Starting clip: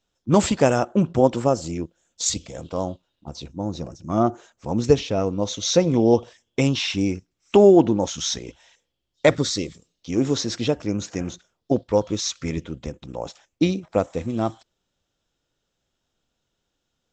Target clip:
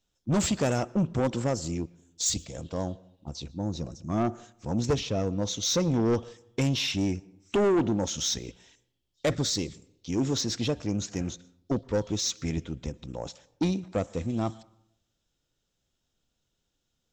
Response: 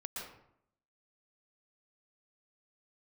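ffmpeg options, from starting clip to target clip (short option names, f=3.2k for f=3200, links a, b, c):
-filter_complex "[0:a]equalizer=f=910:w=0.3:g=-6.5,asoftclip=type=tanh:threshold=-20dB,asplit=2[a][b];[1:a]atrim=start_sample=2205[c];[b][c]afir=irnorm=-1:irlink=0,volume=-21dB[d];[a][d]amix=inputs=2:normalize=0"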